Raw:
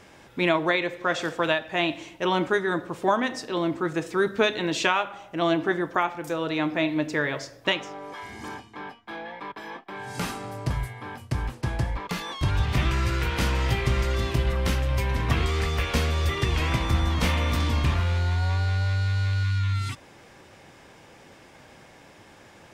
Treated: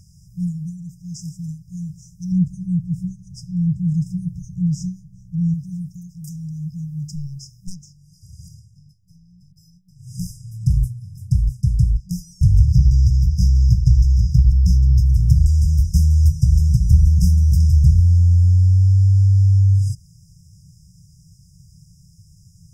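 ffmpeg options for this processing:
-filter_complex "[0:a]asettb=1/sr,asplit=3[a][b][c];[a]atrim=end=2.324[d];[b]atrim=start=2.32:end=5.54,asetpts=PTS-STARTPTS,afade=t=in:d=0.004:c=qsin,afade=t=out:st=3.216:d=0.004:c=qsin,tiltshelf=f=970:g=8[e];[c]atrim=start=5.536[f];[d][e]acrossfade=d=0.004:c1=hsin:c2=qsin[g];[g][f]acrossfade=d=0.004:c1=qsin:c2=hsin,asettb=1/sr,asplit=3[h][i][j];[h]atrim=end=7.154[k];[i]atrim=start=7.15:end=10.61,asetpts=PTS-STARTPTS,afade=t=in:d=0.004:c=qsin,afade=t=out:st=3.456:d=0.004:c=qsin,aeval=exprs='(tanh(5.01*val(0)+0.6)-tanh(0.6))/5.01':c=same[l];[j]atrim=start=10.606[m];[k][l]acrossfade=d=0.004:c1=hsin:c2=qsin[n];[n][m]acrossfade=d=0.004:c1=qsin:c2=hsin,asettb=1/sr,asplit=3[o][p][q];[o]atrim=end=12.724[r];[p]atrim=start=12.72:end=15.06,asetpts=PTS-STARTPTS,afade=t=in:d=0.004:c=qsin,afade=t=out:st=2.336:d=0.004:c=qsin,highshelf=f=6.7k:t=q:w=1.5:g=-8[s];[q]atrim=start=15.056[t];[r][s]acrossfade=d=0.004:c1=hsin:c2=qsin[u];[u][t]acrossfade=d=0.004:c1=qsin:c2=hsin,afftfilt=real='re*(1-between(b*sr/4096,190,4900))':imag='im*(1-between(b*sr/4096,190,4900))':win_size=4096:overlap=0.75,lowshelf=f=230:g=9,volume=4dB"

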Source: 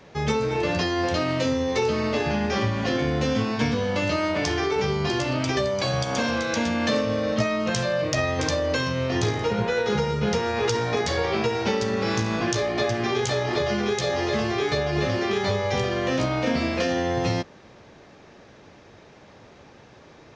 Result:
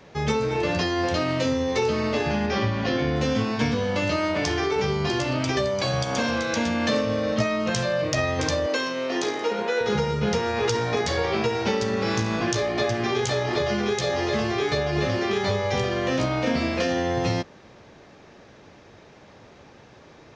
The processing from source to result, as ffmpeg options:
-filter_complex "[0:a]asettb=1/sr,asplit=3[a][b][c];[a]atrim=end=2.464[d];[b]atrim=start=2.46:end=3.16,asetpts=PTS-STARTPTS,afade=t=in:d=0.004:c=qsin,afade=t=out:st=0.696:d=0.004:c=qsin,lowpass=f=5.9k:w=0.5412,lowpass=f=5.9k:w=1.3066[e];[c]atrim=start=3.156[f];[d][e]acrossfade=d=0.004:c1=hsin:c2=qsin[g];[g][f]acrossfade=d=0.004:c1=qsin:c2=hsin,asettb=1/sr,asplit=3[h][i][j];[h]atrim=end=8.664[k];[i]atrim=start=8.66:end=9.81,asetpts=PTS-STARTPTS,afade=t=in:d=0.004:c=qsin,afade=t=out:st=1.146:d=0.004:c=qsin,highpass=f=250:w=0.5412,highpass=f=250:w=1.3066[l];[j]atrim=start=9.806[m];[k][l]acrossfade=d=0.004:c1=hsin:c2=qsin[n];[n][m]acrossfade=d=0.004:c1=qsin:c2=hsin"

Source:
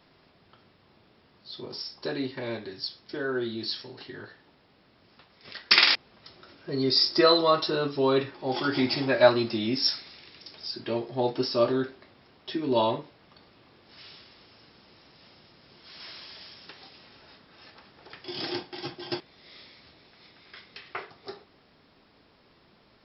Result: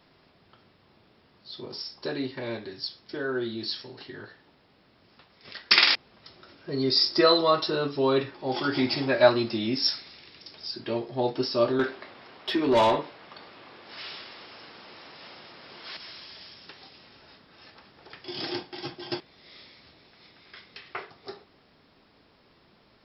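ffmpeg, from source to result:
-filter_complex "[0:a]asettb=1/sr,asplit=3[a][b][c];[a]atrim=end=11.794[d];[b]atrim=start=11.79:end=15.97,asetpts=PTS-STARTPTS,afade=t=in:d=0.004:c=qsin,afade=t=out:st=4.176:d=0.004:c=qsin,asplit=2[e][f];[f]highpass=f=720:p=1,volume=19dB,asoftclip=type=tanh:threshold=-13dB[g];[e][g]amix=inputs=2:normalize=0,lowpass=f=2.5k:p=1,volume=-6dB[h];[c]atrim=start=15.966[i];[d][h]acrossfade=d=0.004:c1=hsin:c2=qsin[j];[j][i]acrossfade=d=0.004:c1=qsin:c2=hsin"

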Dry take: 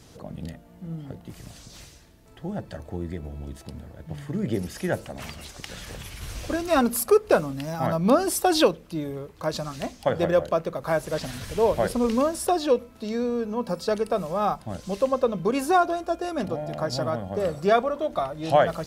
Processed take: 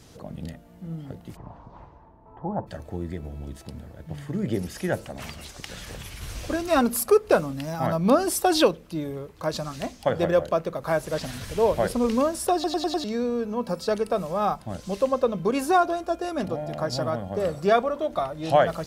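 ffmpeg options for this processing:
-filter_complex "[0:a]asplit=3[a][b][c];[a]afade=t=out:st=1.35:d=0.02[d];[b]lowpass=f=950:t=q:w=6,afade=t=in:st=1.35:d=0.02,afade=t=out:st=2.66:d=0.02[e];[c]afade=t=in:st=2.66:d=0.02[f];[d][e][f]amix=inputs=3:normalize=0,asplit=6[g][h][i][j][k][l];[g]atrim=end=12.642[m];[h]atrim=start=12.538:end=12.642[n];[i]atrim=start=12.538:end=12.642[o];[j]atrim=start=12.538:end=12.642[p];[k]atrim=start=12.538:end=12.642[q];[l]atrim=start=13.038[r];[m][n]acrossfade=d=0.004:c1=hsin:c2=hsin[s];[s][o]acrossfade=d=0.004:c1=hsin:c2=hsin[t];[t][p]acrossfade=d=0.004:c1=hsin:c2=hsin[u];[u][q]acrossfade=d=0.004:c1=hsin:c2=hsin[v];[v][r]acrossfade=d=0.004:c1=hsin:c2=hsin"

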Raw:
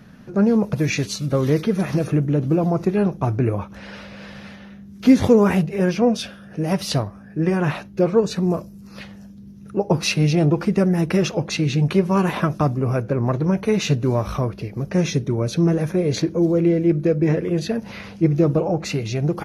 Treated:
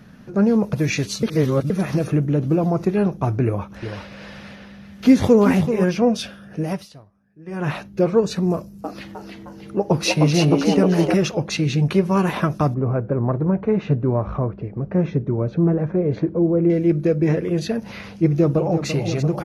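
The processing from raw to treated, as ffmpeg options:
-filter_complex "[0:a]asettb=1/sr,asplit=3[a][b][c];[a]atrim=end=3.444[d];[b]atrim=start=3.44:end=5.84,asetpts=PTS-STARTPTS,afade=t=in:d=0.004:c=qsin,afade=t=out:st=2.396:d=0.004:c=qsin,aecho=1:1:384:0.355,atrim=end_sample=105840[e];[c]atrim=start=5.836[f];[d][e]acrossfade=d=0.004:c1=hsin:c2=qsin[g];[g][f]acrossfade=d=0.004:c1=qsin:c2=hsin,asettb=1/sr,asplit=3[h][i][j];[h]atrim=end=8.534[k];[i]atrim=start=8.53:end=11.14,asetpts=PTS-STARTPTS,afade=t=in:d=0.004:c=qsin,afade=t=out:st=2.606:d=0.004:c=qsin,asplit=7[l][m][n][o][p][q][r];[m]adelay=309,afreqshift=130,volume=-4dB[s];[n]adelay=618,afreqshift=260,volume=-10.9dB[t];[o]adelay=927,afreqshift=390,volume=-17.9dB[u];[p]adelay=1236,afreqshift=520,volume=-24.8dB[v];[q]adelay=1545,afreqshift=650,volume=-31.7dB[w];[r]adelay=1854,afreqshift=780,volume=-38.7dB[x];[l][s][t][u][v][w][x]amix=inputs=7:normalize=0,atrim=end_sample=115101[y];[j]atrim=start=11.136[z];[k][y]acrossfade=d=0.004:c1=hsin:c2=qsin[aa];[aa][z]acrossfade=d=0.004:c1=qsin:c2=hsin,asettb=1/sr,asplit=3[ab][ac][ad];[ab]atrim=end=12.744[ae];[ac]atrim=start=12.74:end=16.7,asetpts=PTS-STARTPTS,afade=t=in:d=0.004:c=qsin,afade=t=out:st=3.956:d=0.004:c=qsin,lowpass=1.3k[af];[ad]atrim=start=16.696[ag];[ae][af]acrossfade=d=0.004:c1=hsin:c2=qsin[ah];[ah][ag]acrossfade=d=0.004:c1=qsin:c2=hsin,asplit=2[ai][aj];[aj]afade=t=in:st=18.26:d=0.01,afade=t=out:st=18.88:d=0.01,aecho=0:1:340|680|1020|1360|1700|2040|2380|2720|3060|3400|3740|4080:0.334965|0.284721|0.242013|0.205711|0.174854|0.148626|0.126332|0.107382|0.0912749|0.0775837|0.0659461|0.0560542[ak];[ai][ak]amix=inputs=2:normalize=0,asplit=5[al][am][an][ao][ap];[al]atrim=end=1.232[aq];[am]atrim=start=1.228:end=1.702,asetpts=PTS-STARTPTS,areverse[ar];[an]atrim=start=1.698:end=6.89,asetpts=PTS-STARTPTS,afade=t=out:st=4.902:d=0.29:silence=0.0707946[as];[ao]atrim=start=6.89:end=7.45,asetpts=PTS-STARTPTS,volume=-23dB[at];[ap]atrim=start=7.45,asetpts=PTS-STARTPTS,afade=t=in:d=0.29:silence=0.0707946[au];[aq][ar]acrossfade=d=0.004:c1=hsin:c2=hsin[av];[as][at][au]concat=n=3:v=0:a=1[aw];[av][aw]acrossfade=d=0.004:c1=hsin:c2=hsin"

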